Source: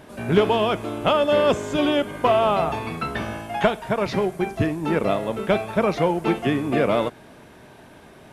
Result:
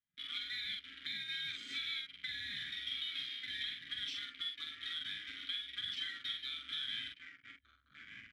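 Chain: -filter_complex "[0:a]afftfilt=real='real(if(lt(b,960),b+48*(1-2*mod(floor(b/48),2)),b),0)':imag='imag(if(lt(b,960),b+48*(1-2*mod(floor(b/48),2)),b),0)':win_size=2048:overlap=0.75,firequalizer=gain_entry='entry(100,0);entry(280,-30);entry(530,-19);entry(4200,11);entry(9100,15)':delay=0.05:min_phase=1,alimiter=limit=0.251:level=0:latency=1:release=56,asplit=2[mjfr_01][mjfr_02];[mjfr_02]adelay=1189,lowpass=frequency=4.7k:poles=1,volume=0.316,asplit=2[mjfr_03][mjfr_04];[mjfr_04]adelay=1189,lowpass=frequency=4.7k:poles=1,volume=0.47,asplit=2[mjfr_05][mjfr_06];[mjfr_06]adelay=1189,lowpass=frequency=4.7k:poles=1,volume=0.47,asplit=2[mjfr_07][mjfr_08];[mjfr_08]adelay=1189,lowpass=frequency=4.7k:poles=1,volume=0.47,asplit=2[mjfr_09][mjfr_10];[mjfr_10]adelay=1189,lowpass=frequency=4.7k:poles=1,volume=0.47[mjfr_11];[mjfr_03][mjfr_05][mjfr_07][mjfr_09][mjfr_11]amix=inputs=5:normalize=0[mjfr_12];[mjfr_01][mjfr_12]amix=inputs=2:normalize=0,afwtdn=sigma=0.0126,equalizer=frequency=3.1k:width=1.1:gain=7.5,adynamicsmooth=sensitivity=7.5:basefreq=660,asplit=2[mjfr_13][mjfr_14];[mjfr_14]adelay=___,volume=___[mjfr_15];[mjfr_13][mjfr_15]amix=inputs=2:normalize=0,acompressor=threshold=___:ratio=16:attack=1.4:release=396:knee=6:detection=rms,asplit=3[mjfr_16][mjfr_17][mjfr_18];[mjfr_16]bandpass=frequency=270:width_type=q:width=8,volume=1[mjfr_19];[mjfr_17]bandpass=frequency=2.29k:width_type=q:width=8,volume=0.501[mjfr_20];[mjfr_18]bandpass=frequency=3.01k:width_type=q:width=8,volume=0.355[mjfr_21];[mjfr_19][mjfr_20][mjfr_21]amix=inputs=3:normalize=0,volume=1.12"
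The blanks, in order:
45, 0.631, 0.1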